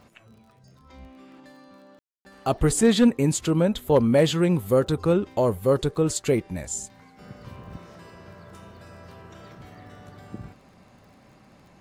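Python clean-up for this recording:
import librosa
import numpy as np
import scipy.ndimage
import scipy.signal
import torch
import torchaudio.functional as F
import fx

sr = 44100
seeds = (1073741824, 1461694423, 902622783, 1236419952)

y = fx.fix_declip(x, sr, threshold_db=-10.0)
y = fx.fix_declick_ar(y, sr, threshold=6.5)
y = fx.fix_ambience(y, sr, seeds[0], print_start_s=0.08, print_end_s=0.58, start_s=1.99, end_s=2.25)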